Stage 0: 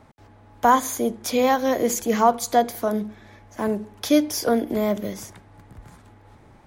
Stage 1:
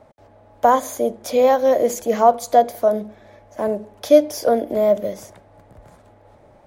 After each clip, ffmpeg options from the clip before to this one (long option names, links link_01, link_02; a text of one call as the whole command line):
ffmpeg -i in.wav -af "equalizer=frequency=590:width_type=o:width=0.66:gain=15,volume=-3.5dB" out.wav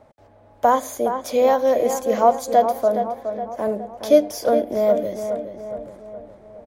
ffmpeg -i in.wav -filter_complex "[0:a]asplit=2[link_01][link_02];[link_02]adelay=417,lowpass=frequency=2600:poles=1,volume=-8dB,asplit=2[link_03][link_04];[link_04]adelay=417,lowpass=frequency=2600:poles=1,volume=0.53,asplit=2[link_05][link_06];[link_06]adelay=417,lowpass=frequency=2600:poles=1,volume=0.53,asplit=2[link_07][link_08];[link_08]adelay=417,lowpass=frequency=2600:poles=1,volume=0.53,asplit=2[link_09][link_10];[link_10]adelay=417,lowpass=frequency=2600:poles=1,volume=0.53,asplit=2[link_11][link_12];[link_12]adelay=417,lowpass=frequency=2600:poles=1,volume=0.53[link_13];[link_01][link_03][link_05][link_07][link_09][link_11][link_13]amix=inputs=7:normalize=0,volume=-2dB" out.wav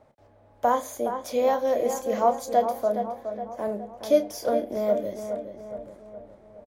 ffmpeg -i in.wav -filter_complex "[0:a]asplit=2[link_01][link_02];[link_02]adelay=29,volume=-10dB[link_03];[link_01][link_03]amix=inputs=2:normalize=0,volume=-6dB" out.wav